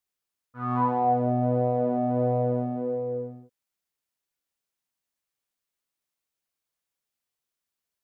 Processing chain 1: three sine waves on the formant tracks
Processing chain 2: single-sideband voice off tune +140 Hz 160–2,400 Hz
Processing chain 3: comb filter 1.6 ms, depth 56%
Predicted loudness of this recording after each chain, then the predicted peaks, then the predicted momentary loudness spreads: −26.0, −26.5, −25.0 LKFS; −10.5, −12.5, −11.5 dBFS; 8, 9, 9 LU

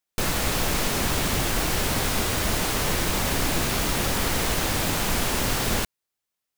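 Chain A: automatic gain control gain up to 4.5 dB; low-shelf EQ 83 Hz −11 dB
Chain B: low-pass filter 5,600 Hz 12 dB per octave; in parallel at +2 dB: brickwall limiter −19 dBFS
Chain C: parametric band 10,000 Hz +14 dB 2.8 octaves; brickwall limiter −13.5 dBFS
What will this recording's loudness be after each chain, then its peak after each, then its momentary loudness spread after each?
−20.0, −20.5, −20.5 LKFS; −8.5, −8.0, −13.5 dBFS; 2, 0, 1 LU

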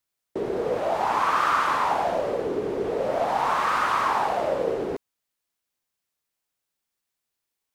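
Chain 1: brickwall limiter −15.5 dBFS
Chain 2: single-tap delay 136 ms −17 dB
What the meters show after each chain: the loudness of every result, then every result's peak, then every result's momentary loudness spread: −25.5, −24.5 LKFS; −15.5, −9.5 dBFS; 6, 8 LU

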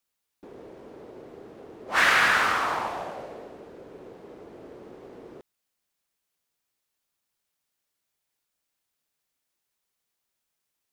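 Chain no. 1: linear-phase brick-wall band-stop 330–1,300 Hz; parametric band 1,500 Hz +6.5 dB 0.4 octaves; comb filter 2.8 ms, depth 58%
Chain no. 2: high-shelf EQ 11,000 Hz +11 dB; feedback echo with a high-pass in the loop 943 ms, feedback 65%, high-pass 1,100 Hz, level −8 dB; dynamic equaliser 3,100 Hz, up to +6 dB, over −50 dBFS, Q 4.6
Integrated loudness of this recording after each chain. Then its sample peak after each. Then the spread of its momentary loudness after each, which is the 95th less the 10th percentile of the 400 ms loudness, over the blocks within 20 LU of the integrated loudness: −18.0, −24.5 LKFS; −5.0, −7.5 dBFS; 16, 24 LU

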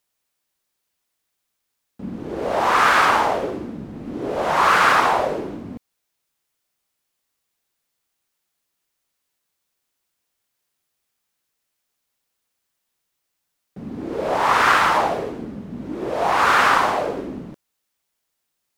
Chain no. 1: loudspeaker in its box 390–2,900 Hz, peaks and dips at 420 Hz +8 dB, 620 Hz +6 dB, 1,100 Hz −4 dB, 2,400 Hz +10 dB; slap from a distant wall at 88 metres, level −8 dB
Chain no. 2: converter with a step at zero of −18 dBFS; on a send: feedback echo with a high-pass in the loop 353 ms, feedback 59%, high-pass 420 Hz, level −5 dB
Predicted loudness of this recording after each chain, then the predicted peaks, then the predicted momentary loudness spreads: −17.5, −17.0 LKFS; −2.0, −1.0 dBFS; 16, 8 LU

